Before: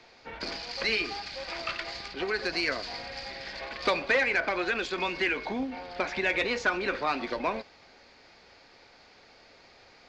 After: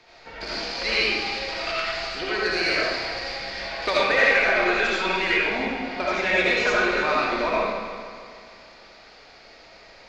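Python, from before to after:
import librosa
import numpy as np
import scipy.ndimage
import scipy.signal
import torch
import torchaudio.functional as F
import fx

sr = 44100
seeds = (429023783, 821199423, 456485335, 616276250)

p1 = fx.peak_eq(x, sr, hz=260.0, db=-3.0, octaves=0.97)
p2 = p1 + fx.echo_heads(p1, sr, ms=151, heads='first and second', feedback_pct=51, wet_db=-14.5, dry=0)
y = fx.rev_freeverb(p2, sr, rt60_s=0.99, hf_ratio=0.85, predelay_ms=35, drr_db=-6.5)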